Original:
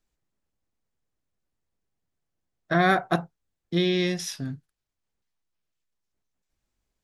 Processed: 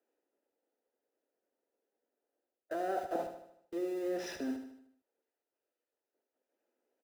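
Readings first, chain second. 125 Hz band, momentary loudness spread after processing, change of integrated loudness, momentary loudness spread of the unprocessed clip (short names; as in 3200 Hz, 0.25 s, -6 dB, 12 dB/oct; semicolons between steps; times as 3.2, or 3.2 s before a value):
-31.0 dB, 9 LU, -13.0 dB, 14 LU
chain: steep high-pass 240 Hz 48 dB/oct; treble ducked by the level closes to 1300 Hz, closed at -22 dBFS; graphic EQ 500/4000/8000 Hz +12/-9/-12 dB; reverse; compressor 6:1, threshold -34 dBFS, peak gain reduction 19.5 dB; reverse; short-mantissa float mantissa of 4-bit; in parallel at -6 dB: Schmitt trigger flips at -52 dBFS; on the sum: notch comb 1100 Hz; feedback echo 76 ms, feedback 50%, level -8.5 dB; gain -1.5 dB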